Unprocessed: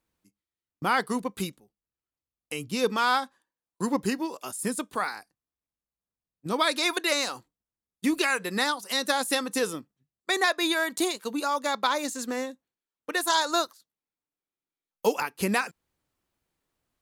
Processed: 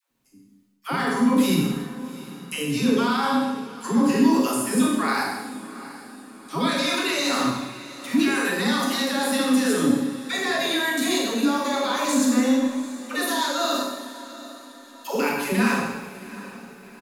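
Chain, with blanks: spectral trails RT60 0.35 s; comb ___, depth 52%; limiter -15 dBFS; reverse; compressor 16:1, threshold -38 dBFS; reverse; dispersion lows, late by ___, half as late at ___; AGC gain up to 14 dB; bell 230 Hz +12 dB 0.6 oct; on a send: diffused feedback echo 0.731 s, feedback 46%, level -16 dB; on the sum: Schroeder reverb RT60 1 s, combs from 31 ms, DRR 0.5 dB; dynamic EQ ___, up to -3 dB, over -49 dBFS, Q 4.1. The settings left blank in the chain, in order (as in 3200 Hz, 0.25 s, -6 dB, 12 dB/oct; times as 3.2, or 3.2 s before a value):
7.3 ms, 0.11 s, 530 Hz, 8700 Hz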